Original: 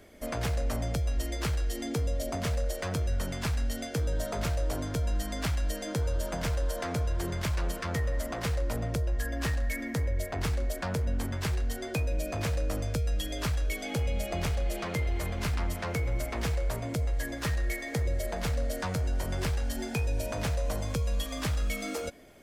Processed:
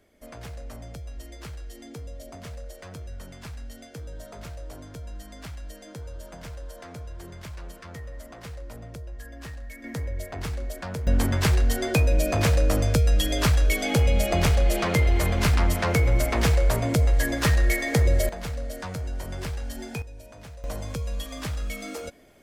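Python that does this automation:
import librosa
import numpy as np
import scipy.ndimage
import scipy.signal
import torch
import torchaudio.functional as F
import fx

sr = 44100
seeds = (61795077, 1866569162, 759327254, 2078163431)

y = fx.gain(x, sr, db=fx.steps((0.0, -9.0), (9.84, -1.5), (11.07, 9.5), (18.29, -2.0), (20.02, -13.0), (20.64, -1.0)))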